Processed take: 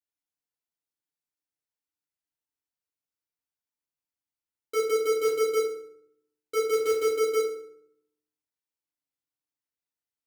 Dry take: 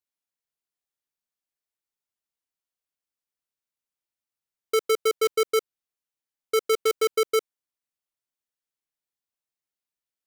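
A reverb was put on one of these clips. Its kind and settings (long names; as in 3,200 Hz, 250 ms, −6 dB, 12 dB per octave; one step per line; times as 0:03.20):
feedback delay network reverb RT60 0.69 s, low-frequency decay 1.6×, high-frequency decay 0.7×, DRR −4.5 dB
level −10 dB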